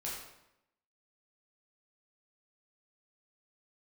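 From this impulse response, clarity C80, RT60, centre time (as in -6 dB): 4.5 dB, 0.85 s, 56 ms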